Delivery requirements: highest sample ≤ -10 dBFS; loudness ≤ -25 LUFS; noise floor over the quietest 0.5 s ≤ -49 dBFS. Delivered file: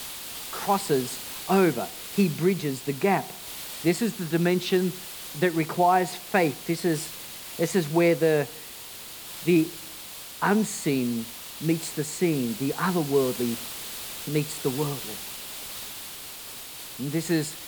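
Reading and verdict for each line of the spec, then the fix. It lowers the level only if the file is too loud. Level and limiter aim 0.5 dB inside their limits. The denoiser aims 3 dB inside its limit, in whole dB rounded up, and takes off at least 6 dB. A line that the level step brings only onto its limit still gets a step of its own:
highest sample -7.0 dBFS: fail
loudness -26.5 LUFS: pass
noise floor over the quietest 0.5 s -41 dBFS: fail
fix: noise reduction 11 dB, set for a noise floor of -41 dBFS; peak limiter -10.5 dBFS

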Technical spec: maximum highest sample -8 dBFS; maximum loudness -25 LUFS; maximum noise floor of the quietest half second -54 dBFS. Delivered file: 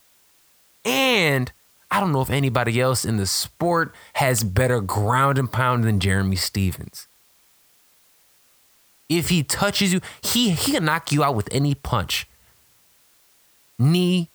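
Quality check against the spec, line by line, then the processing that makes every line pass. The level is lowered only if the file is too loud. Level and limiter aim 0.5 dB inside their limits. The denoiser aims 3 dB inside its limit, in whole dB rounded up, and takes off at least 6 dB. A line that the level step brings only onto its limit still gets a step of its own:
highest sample -5.0 dBFS: fail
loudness -21.0 LUFS: fail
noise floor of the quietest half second -58 dBFS: pass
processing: trim -4.5 dB

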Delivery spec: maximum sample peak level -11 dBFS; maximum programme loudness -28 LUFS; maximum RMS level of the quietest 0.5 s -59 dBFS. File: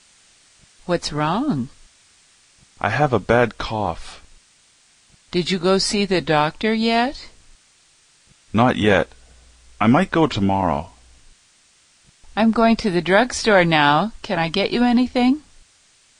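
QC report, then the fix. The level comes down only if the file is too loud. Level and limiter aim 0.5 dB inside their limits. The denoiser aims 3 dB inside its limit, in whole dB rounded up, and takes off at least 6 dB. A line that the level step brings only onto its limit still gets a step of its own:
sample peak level -3.5 dBFS: fail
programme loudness -19.0 LUFS: fail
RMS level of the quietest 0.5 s -56 dBFS: fail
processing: trim -9.5 dB

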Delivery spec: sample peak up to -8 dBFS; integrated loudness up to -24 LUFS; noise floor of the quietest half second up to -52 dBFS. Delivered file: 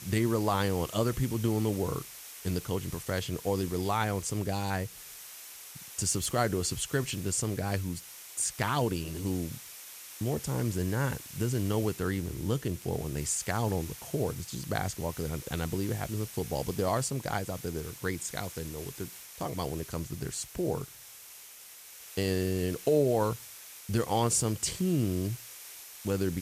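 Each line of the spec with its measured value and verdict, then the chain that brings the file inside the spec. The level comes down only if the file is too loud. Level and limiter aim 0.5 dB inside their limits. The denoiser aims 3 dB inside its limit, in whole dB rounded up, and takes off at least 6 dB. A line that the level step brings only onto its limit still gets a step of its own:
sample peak -13.5 dBFS: pass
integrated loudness -32.0 LUFS: pass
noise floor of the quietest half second -50 dBFS: fail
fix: noise reduction 6 dB, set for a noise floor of -50 dBFS

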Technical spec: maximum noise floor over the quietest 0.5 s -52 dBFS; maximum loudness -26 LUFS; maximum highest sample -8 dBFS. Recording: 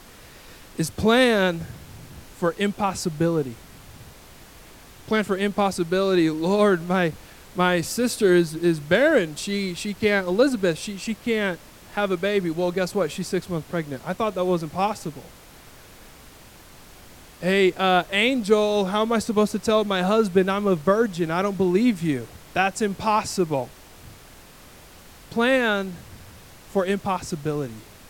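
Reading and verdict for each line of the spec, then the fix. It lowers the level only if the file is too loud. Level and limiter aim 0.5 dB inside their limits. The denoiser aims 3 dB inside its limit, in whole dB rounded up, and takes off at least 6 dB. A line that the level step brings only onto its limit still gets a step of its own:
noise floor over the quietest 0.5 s -47 dBFS: fail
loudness -22.5 LUFS: fail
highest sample -5.0 dBFS: fail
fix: noise reduction 6 dB, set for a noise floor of -47 dBFS; trim -4 dB

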